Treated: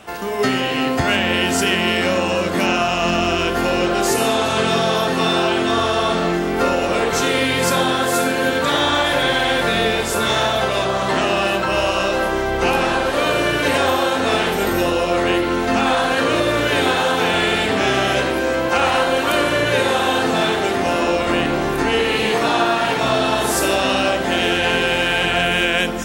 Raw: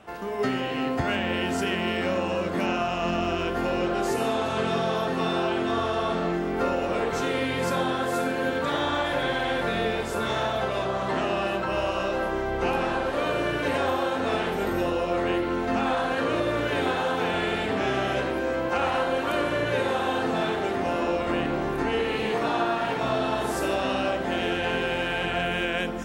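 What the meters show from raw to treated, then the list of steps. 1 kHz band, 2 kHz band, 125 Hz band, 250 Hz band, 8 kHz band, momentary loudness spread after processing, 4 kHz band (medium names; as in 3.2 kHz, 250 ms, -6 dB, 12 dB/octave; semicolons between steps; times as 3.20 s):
+8.0 dB, +10.0 dB, +7.0 dB, +7.0 dB, +16.0 dB, 2 LU, +13.0 dB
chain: treble shelf 2.9 kHz +10.5 dB; trim +7 dB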